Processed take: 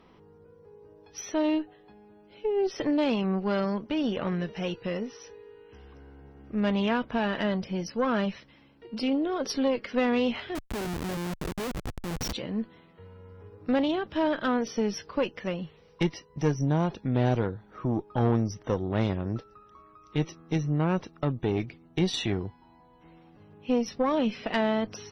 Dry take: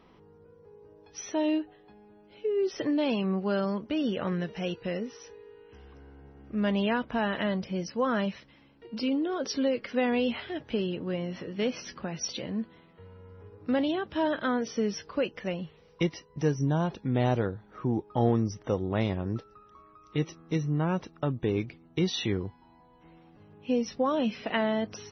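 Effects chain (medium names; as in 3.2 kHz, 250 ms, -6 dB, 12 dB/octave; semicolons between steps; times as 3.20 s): 10.55–12.33 s: Schmitt trigger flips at -34.5 dBFS; valve stage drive 19 dB, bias 0.6; trim +4 dB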